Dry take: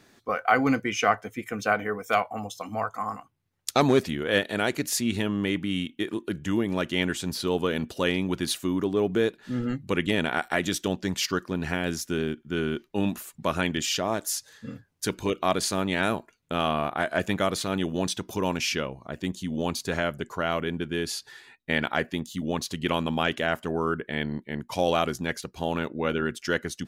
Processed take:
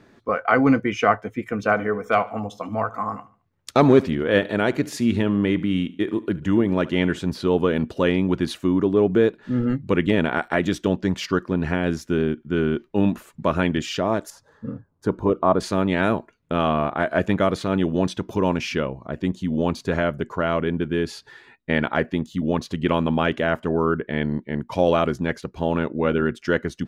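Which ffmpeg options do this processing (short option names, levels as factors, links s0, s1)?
-filter_complex "[0:a]asettb=1/sr,asplit=3[s0][s1][s2];[s0]atrim=end=1.564[s3];[s1]atrim=start=1.56:end=7.19,asetpts=PTS-STARTPTS,afade=t=in:d=0.004:c=qsin,afade=t=out:st=5.626:d=0.004:c=qsin,aecho=1:1:73|146|219:0.106|0.0445|0.0187,atrim=end_sample=248283[s4];[s2]atrim=start=7.186[s5];[s3][s4]acrossfade=d=0.004:c1=hsin:c2=qsin[s6];[s6][s5]acrossfade=d=0.004:c1=qsin:c2=hsin,asettb=1/sr,asplit=3[s7][s8][s9];[s7]atrim=end=14.304[s10];[s8]atrim=start=14.3:end=15.6,asetpts=PTS-STARTPTS,afade=t=in:d=0.004:c=qsin,afade=t=out:st=1.296:d=0.004:c=qsin,highshelf=f=1600:t=q:w=1.5:g=-11.5[s11];[s9]atrim=start=15.596[s12];[s10][s11]acrossfade=d=0.004:c1=hsin:c2=qsin[s13];[s13][s12]acrossfade=d=0.004:c1=qsin:c2=hsin,lowpass=f=1200:p=1,bandreject=f=760:w=12,volume=2.24"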